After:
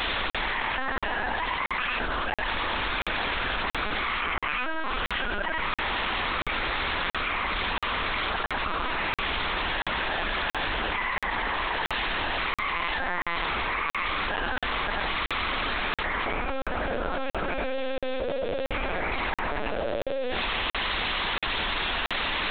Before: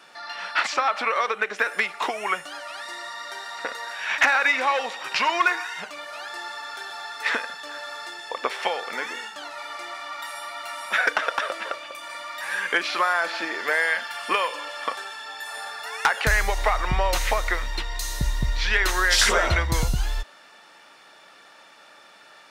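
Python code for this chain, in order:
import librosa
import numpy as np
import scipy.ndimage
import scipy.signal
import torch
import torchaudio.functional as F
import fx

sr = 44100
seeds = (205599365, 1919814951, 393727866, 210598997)

p1 = fx.lowpass(x, sr, hz=1300.0, slope=6)
p2 = fx.low_shelf(p1, sr, hz=70.0, db=-3.5)
p3 = p2 * np.sin(2.0 * np.pi * 510.0 * np.arange(len(p2)) / sr)
p4 = fx.quant_dither(p3, sr, seeds[0], bits=6, dither='triangular')
p5 = p4 + 10.0 ** (-3.0 / 20.0) * np.pad(p4, (int(94 * sr / 1000.0), 0))[:len(p4)]
p6 = fx.rider(p5, sr, range_db=10, speed_s=0.5)
p7 = fx.hum_notches(p6, sr, base_hz=60, count=7)
p8 = p7 + fx.echo_single(p7, sr, ms=73, db=-9.5, dry=0)
p9 = fx.lpc_vocoder(p8, sr, seeds[1], excitation='pitch_kept', order=8)
p10 = fx.peak_eq(p9, sr, hz=120.0, db=-14.5, octaves=1.3)
p11 = fx.buffer_crackle(p10, sr, first_s=0.3, period_s=0.68, block=2048, kind='zero')
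p12 = fx.env_flatten(p11, sr, amount_pct=100)
y = p12 * librosa.db_to_amplitude(-3.5)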